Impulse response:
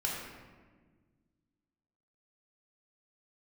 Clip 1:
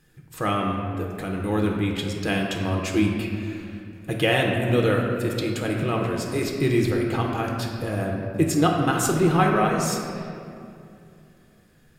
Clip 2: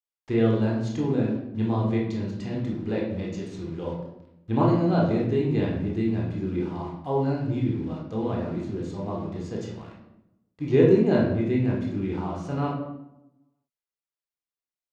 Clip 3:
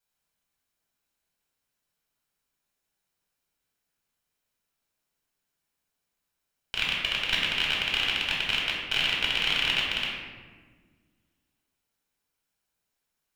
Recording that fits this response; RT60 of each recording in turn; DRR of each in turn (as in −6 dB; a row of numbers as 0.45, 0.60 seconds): 3; 2.6, 0.85, 1.5 seconds; −0.5, −3.5, −4.0 decibels